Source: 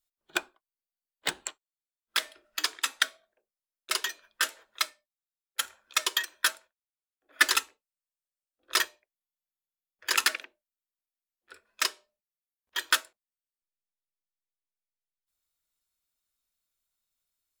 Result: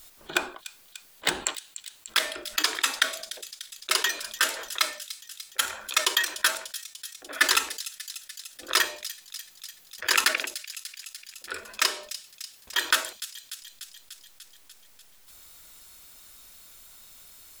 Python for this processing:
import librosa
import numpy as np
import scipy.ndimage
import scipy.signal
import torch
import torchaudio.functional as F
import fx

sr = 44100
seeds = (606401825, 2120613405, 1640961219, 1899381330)

p1 = x + fx.echo_wet_highpass(x, sr, ms=295, feedback_pct=50, hz=4100.0, wet_db=-23.5, dry=0)
y = fx.env_flatten(p1, sr, amount_pct=50)